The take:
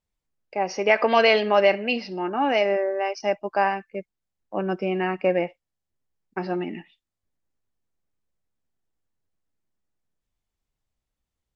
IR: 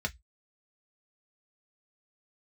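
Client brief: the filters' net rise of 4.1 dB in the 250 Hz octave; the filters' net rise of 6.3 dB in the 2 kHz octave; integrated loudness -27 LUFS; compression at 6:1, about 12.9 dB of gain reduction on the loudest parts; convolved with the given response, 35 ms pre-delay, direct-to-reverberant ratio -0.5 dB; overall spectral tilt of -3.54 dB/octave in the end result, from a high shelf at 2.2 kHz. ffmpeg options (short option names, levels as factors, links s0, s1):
-filter_complex "[0:a]equalizer=f=250:t=o:g=5.5,equalizer=f=2000:t=o:g=3.5,highshelf=f=2200:g=7,acompressor=threshold=0.0631:ratio=6,asplit=2[s0][s1];[1:a]atrim=start_sample=2205,adelay=35[s2];[s1][s2]afir=irnorm=-1:irlink=0,volume=0.631[s3];[s0][s3]amix=inputs=2:normalize=0,volume=0.841"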